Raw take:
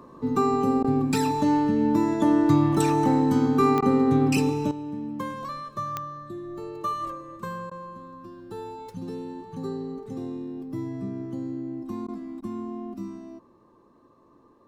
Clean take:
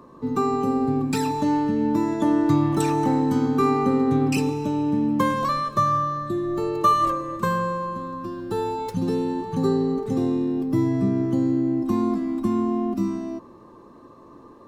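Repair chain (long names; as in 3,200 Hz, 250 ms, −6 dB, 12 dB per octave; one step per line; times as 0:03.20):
click removal
repair the gap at 0:00.83/0:03.81/0:07.70/0:12.07/0:12.41, 12 ms
level 0 dB, from 0:04.71 +11 dB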